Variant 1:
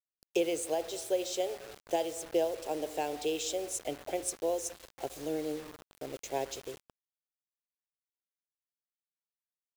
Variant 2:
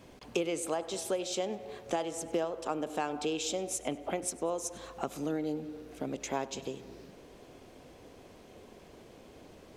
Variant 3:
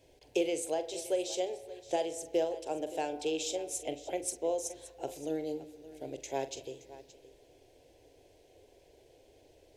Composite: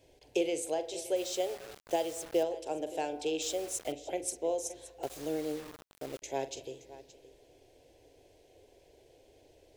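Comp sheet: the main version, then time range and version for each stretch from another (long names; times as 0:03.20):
3
0:01.16–0:02.43: punch in from 1
0:03.42–0:03.92: punch in from 1
0:05.03–0:06.22: punch in from 1
not used: 2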